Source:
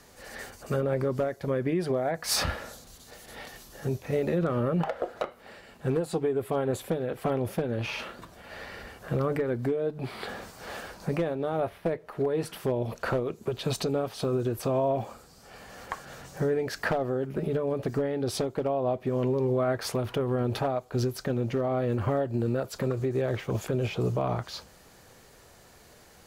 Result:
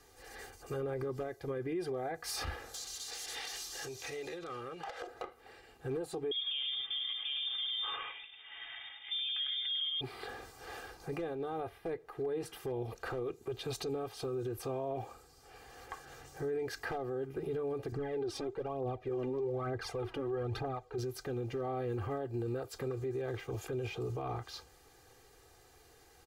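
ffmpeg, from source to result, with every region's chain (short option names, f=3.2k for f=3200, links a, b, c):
-filter_complex "[0:a]asettb=1/sr,asplit=3[a][b][c];[a]atrim=end=2.744[d];[b]atrim=start=2.74:end=5.07,asetpts=PTS-STARTPTS,afade=t=in:d=0.004:c=qsin,afade=t=out:st=2.326:d=0.004:c=qsin,equalizer=f=6.1k:t=o:w=2.4:g=14.5,acompressor=threshold=-34dB:ratio=6:attack=3.2:release=140:knee=1:detection=peak,asplit=2[e][f];[f]highpass=f=720:p=1,volume=12dB,asoftclip=type=tanh:threshold=-22.5dB[g];[e][g]amix=inputs=2:normalize=0,lowpass=f=6.2k:p=1,volume=-6dB[h];[c]atrim=start=5.066[i];[d][h]acrossfade=d=0.004:c1=hsin:c2=qsin[j];[j][i]acrossfade=d=0.004:c1=qsin:c2=hsin,asettb=1/sr,asplit=3[k][l][m];[k]atrim=end=6.314[n];[l]atrim=start=6.31:end=10.01,asetpts=PTS-STARTPTS,afade=t=in:d=0.004:c=qsin,afade=t=out:st=3.696:d=0.004:c=qsin,aecho=1:1:7:0.47,atrim=end_sample=163170,lowpass=f=3.1k:t=q:w=0.5098,lowpass=f=3.1k:t=q:w=0.6013,lowpass=f=3.1k:t=q:w=0.9,lowpass=f=3.1k:t=q:w=2.563,afreqshift=-3700,aecho=1:1:101:0.596,atrim=end_sample=163170[o];[m]atrim=start=10.006[p];[n][o]acrossfade=d=0.004:c1=hsin:c2=qsin[q];[q][p]acrossfade=d=0.004:c1=qsin:c2=hsin,asettb=1/sr,asplit=3[r][s][t];[r]atrim=end=17.924[u];[s]atrim=start=17.92:end=20.98,asetpts=PTS-STARTPTS,afade=t=in:d=0.004:c=qsin,afade=t=out:st=3.056:d=0.004:c=qsin,aemphasis=mode=reproduction:type=50fm,aphaser=in_gain=1:out_gain=1:delay=3.7:decay=0.61:speed=1.1:type=triangular[v];[t]atrim=start=20.976[w];[u][v]acrossfade=d=0.004:c1=hsin:c2=qsin[x];[x][w]acrossfade=d=0.004:c1=qsin:c2=hsin,aecho=1:1:2.5:0.76,alimiter=limit=-20.5dB:level=0:latency=1:release=27,volume=-9dB"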